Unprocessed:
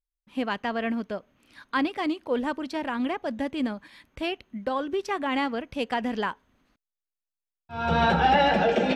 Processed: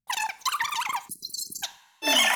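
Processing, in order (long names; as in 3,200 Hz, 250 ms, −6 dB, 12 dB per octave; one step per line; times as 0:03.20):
change of speed 3.81×
coupled-rooms reverb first 0.42 s, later 1.9 s, from −18 dB, DRR 13.5 dB
time-frequency box erased 0:01.09–0:01.63, 420–4,000 Hz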